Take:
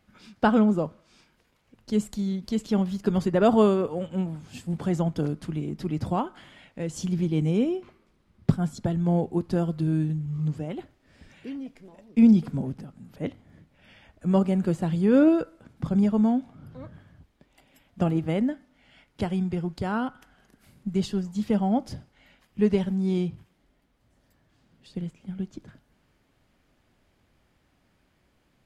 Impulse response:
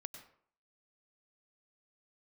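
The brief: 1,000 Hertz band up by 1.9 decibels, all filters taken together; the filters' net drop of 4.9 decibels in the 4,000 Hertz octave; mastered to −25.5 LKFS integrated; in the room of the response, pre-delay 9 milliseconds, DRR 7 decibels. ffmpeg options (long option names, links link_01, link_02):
-filter_complex "[0:a]equalizer=frequency=1000:width_type=o:gain=3,equalizer=frequency=4000:width_type=o:gain=-7,asplit=2[link_01][link_02];[1:a]atrim=start_sample=2205,adelay=9[link_03];[link_02][link_03]afir=irnorm=-1:irlink=0,volume=-3dB[link_04];[link_01][link_04]amix=inputs=2:normalize=0,volume=-1dB"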